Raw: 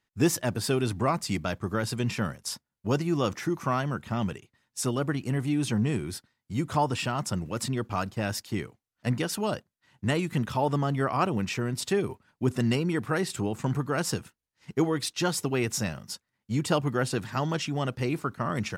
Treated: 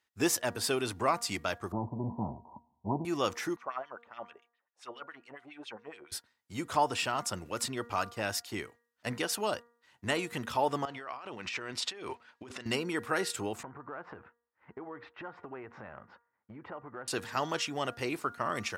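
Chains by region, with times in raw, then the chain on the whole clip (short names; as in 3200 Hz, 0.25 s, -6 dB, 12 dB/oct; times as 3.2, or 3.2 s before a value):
1.72–3.05 comb 1 ms, depth 96% + power-law curve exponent 0.7 + rippled Chebyshev low-pass 990 Hz, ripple 3 dB
3.56–6.12 high shelf 2700 Hz -10.5 dB + LFO band-pass sine 7.2 Hz 560–3600 Hz
10.85–12.66 LPF 3700 Hz + tilt +2.5 dB/oct + negative-ratio compressor -38 dBFS
13.63–17.08 LPF 1800 Hz 24 dB/oct + bell 980 Hz +4 dB 1.4 oct + compressor 16:1, threshold -34 dBFS
whole clip: HPF 74 Hz; bell 150 Hz -15 dB 1.7 oct; de-hum 236.5 Hz, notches 8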